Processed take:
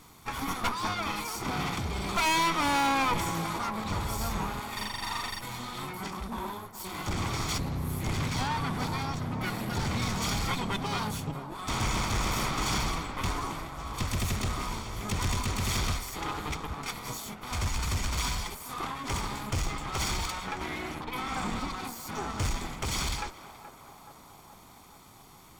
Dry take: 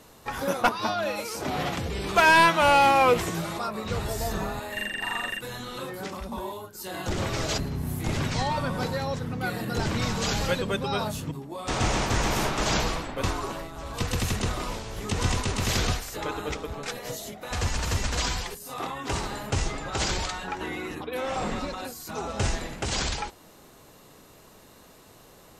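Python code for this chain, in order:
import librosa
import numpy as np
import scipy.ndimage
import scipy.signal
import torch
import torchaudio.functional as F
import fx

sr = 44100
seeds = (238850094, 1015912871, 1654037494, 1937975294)

y = fx.lower_of_two(x, sr, delay_ms=0.89)
y = 10.0 ** (-23.0 / 20.0) * np.tanh(y / 10.0 ** (-23.0 / 20.0))
y = fx.echo_banded(y, sr, ms=425, feedback_pct=74, hz=770.0, wet_db=-11.5)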